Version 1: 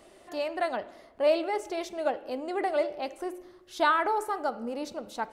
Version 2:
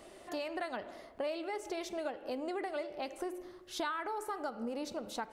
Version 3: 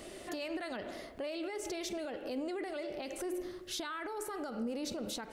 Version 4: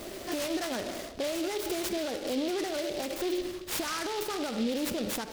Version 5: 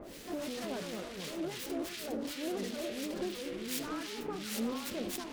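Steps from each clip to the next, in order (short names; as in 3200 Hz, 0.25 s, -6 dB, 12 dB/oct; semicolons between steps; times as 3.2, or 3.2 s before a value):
dynamic EQ 660 Hz, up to -5 dB, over -35 dBFS, Q 1.2; compressor 5:1, threshold -36 dBFS, peak gain reduction 14 dB; gain +1 dB
limiter -37 dBFS, peak gain reduction 12 dB; bell 920 Hz -8 dB 1.3 oct; gain +8.5 dB
noise-modulated delay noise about 3300 Hz, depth 0.088 ms; gain +7 dB
harmonic tremolo 2.8 Hz, depth 100%, crossover 1500 Hz; echoes that change speed 85 ms, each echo -3 st, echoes 3; gain -4 dB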